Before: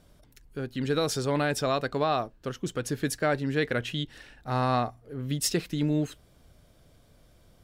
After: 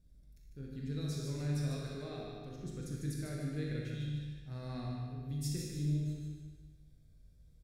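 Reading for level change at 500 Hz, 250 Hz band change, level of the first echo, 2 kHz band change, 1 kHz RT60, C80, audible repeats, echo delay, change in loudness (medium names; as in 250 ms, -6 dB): -17.0 dB, -10.0 dB, -4.5 dB, -19.5 dB, 1.4 s, -0.5 dB, 2, 150 ms, -10.5 dB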